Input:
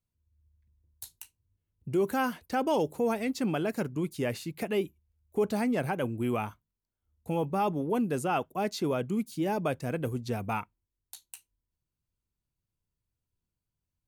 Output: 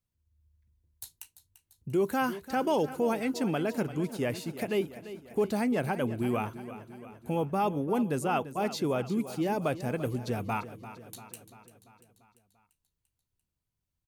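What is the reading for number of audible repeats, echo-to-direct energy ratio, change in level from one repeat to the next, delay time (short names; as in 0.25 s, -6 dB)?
5, -12.0 dB, -4.5 dB, 0.343 s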